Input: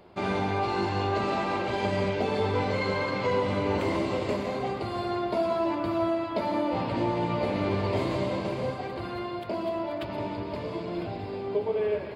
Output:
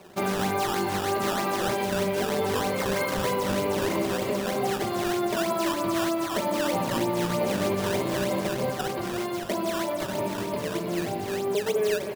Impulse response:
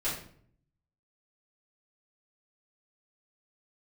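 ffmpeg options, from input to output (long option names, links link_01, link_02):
-filter_complex "[0:a]highpass=100,aecho=1:1:5.2:0.36,alimiter=limit=-21dB:level=0:latency=1:release=148,acrusher=samples=12:mix=1:aa=0.000001:lfo=1:lforange=19.2:lforate=3.2,asplit=2[link_01][link_02];[link_02]aecho=0:1:217:0.133[link_03];[link_01][link_03]amix=inputs=2:normalize=0,volume=3.5dB"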